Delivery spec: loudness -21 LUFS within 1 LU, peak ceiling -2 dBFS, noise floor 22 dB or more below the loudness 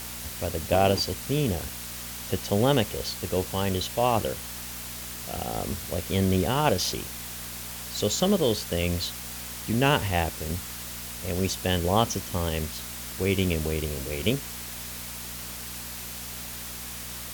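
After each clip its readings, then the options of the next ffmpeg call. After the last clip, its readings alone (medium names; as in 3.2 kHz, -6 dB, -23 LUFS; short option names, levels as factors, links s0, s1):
hum 60 Hz; highest harmonic 240 Hz; hum level -43 dBFS; noise floor -38 dBFS; noise floor target -50 dBFS; loudness -28.0 LUFS; peak level -7.0 dBFS; loudness target -21.0 LUFS
-> -af "bandreject=f=60:t=h:w=4,bandreject=f=120:t=h:w=4,bandreject=f=180:t=h:w=4,bandreject=f=240:t=h:w=4"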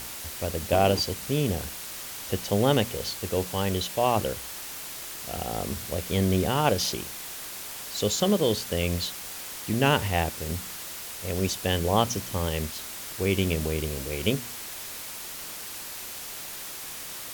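hum not found; noise floor -38 dBFS; noise floor target -50 dBFS
-> -af "afftdn=nr=12:nf=-38"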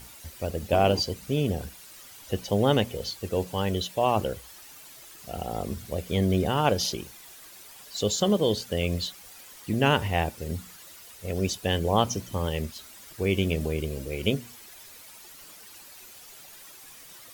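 noise floor -48 dBFS; noise floor target -50 dBFS
-> -af "afftdn=nr=6:nf=-48"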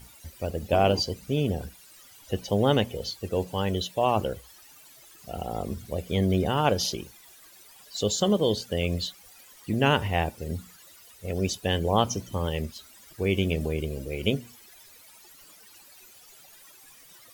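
noise floor -53 dBFS; loudness -27.5 LUFS; peak level -7.5 dBFS; loudness target -21.0 LUFS
-> -af "volume=2.11,alimiter=limit=0.794:level=0:latency=1"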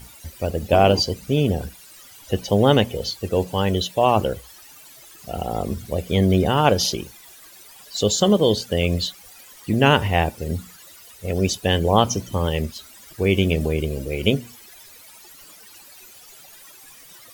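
loudness -21.0 LUFS; peak level -2.0 dBFS; noise floor -46 dBFS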